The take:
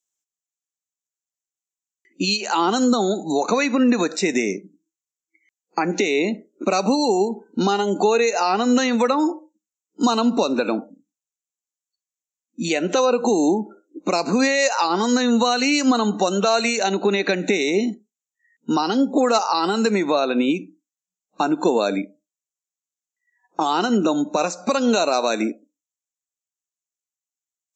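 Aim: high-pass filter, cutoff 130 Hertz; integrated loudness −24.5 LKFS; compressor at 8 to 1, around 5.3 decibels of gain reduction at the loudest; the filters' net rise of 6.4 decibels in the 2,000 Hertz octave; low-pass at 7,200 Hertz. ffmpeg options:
ffmpeg -i in.wav -af "highpass=130,lowpass=7200,equalizer=frequency=2000:width_type=o:gain=8,acompressor=threshold=-18dB:ratio=8,volume=-1.5dB" out.wav

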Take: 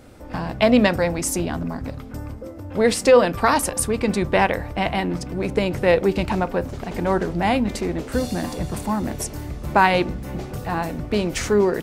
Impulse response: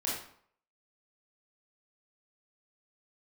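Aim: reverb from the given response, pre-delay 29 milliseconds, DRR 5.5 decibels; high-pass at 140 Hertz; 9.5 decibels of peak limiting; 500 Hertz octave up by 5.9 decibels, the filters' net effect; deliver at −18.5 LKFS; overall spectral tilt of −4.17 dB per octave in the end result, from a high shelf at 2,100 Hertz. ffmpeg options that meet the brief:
-filter_complex "[0:a]highpass=140,equalizer=frequency=500:width_type=o:gain=6.5,highshelf=frequency=2100:gain=4.5,alimiter=limit=-7.5dB:level=0:latency=1,asplit=2[link_01][link_02];[1:a]atrim=start_sample=2205,adelay=29[link_03];[link_02][link_03]afir=irnorm=-1:irlink=0,volume=-10.5dB[link_04];[link_01][link_04]amix=inputs=2:normalize=0,volume=0.5dB"

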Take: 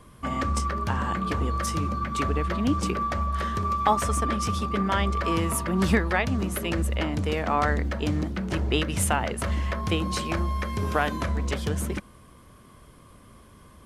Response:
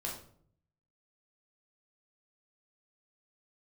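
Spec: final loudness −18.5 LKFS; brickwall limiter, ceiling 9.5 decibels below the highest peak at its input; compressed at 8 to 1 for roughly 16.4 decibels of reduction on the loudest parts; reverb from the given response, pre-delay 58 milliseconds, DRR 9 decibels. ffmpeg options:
-filter_complex "[0:a]acompressor=threshold=-33dB:ratio=8,alimiter=level_in=6dB:limit=-24dB:level=0:latency=1,volume=-6dB,asplit=2[link_01][link_02];[1:a]atrim=start_sample=2205,adelay=58[link_03];[link_02][link_03]afir=irnorm=-1:irlink=0,volume=-10.5dB[link_04];[link_01][link_04]amix=inputs=2:normalize=0,volume=19.5dB"

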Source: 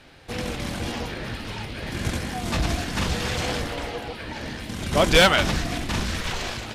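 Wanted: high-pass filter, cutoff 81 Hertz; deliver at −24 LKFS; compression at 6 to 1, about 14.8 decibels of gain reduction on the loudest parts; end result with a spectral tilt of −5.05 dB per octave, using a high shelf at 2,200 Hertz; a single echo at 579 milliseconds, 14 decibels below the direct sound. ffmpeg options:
ffmpeg -i in.wav -af "highpass=81,highshelf=frequency=2200:gain=-6.5,acompressor=threshold=-30dB:ratio=6,aecho=1:1:579:0.2,volume=10.5dB" out.wav

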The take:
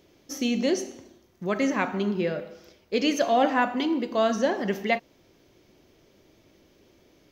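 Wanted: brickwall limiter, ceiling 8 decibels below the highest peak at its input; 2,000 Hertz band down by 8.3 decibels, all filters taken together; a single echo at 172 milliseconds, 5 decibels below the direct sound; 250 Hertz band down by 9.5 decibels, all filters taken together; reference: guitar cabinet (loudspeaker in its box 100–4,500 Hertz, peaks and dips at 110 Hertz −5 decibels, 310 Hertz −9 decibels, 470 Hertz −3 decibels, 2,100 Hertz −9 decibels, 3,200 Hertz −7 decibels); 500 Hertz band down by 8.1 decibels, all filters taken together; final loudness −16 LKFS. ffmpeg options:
ffmpeg -i in.wav -af "equalizer=frequency=250:width_type=o:gain=-5.5,equalizer=frequency=500:width_type=o:gain=-7,equalizer=frequency=2000:width_type=o:gain=-6,alimiter=limit=-22dB:level=0:latency=1,highpass=100,equalizer=frequency=110:width_type=q:width=4:gain=-5,equalizer=frequency=310:width_type=q:width=4:gain=-9,equalizer=frequency=470:width_type=q:width=4:gain=-3,equalizer=frequency=2100:width_type=q:width=4:gain=-9,equalizer=frequency=3200:width_type=q:width=4:gain=-7,lowpass=frequency=4500:width=0.5412,lowpass=frequency=4500:width=1.3066,aecho=1:1:172:0.562,volume=19dB" out.wav

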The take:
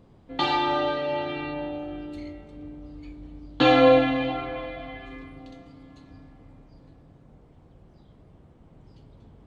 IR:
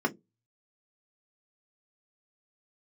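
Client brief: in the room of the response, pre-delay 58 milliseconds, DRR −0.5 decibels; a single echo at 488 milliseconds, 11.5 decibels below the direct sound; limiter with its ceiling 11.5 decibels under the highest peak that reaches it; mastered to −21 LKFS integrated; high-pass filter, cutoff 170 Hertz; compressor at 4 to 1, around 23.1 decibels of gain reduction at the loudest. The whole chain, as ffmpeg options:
-filter_complex "[0:a]highpass=170,acompressor=threshold=-42dB:ratio=4,alimiter=level_in=11.5dB:limit=-24dB:level=0:latency=1,volume=-11.5dB,aecho=1:1:488:0.266,asplit=2[link_01][link_02];[1:a]atrim=start_sample=2205,adelay=58[link_03];[link_02][link_03]afir=irnorm=-1:irlink=0,volume=-9.5dB[link_04];[link_01][link_04]amix=inputs=2:normalize=0,volume=22.5dB"

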